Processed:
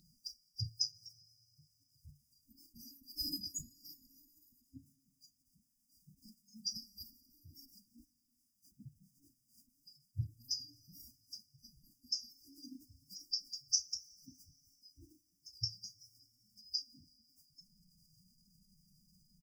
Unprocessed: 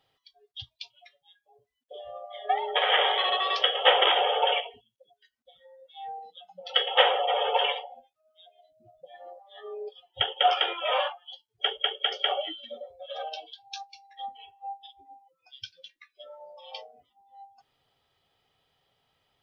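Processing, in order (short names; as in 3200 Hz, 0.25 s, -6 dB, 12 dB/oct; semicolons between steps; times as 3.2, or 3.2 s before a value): spectral delete 3.49–3.77, 1400–5500 Hz; doubler 32 ms -12.5 dB; FFT band-reject 280–3900 Hz; formant-preserving pitch shift +3.5 st; two-slope reverb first 0.28 s, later 3.3 s, from -17 dB, DRR 16 dB; gain +12.5 dB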